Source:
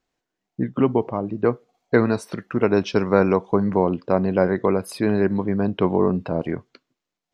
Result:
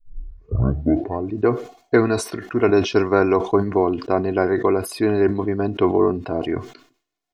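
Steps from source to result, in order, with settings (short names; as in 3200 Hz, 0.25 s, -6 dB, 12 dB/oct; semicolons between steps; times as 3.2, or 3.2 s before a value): tape start at the beginning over 1.35 s; comb 2.8 ms, depth 65%; sustainer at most 130 dB/s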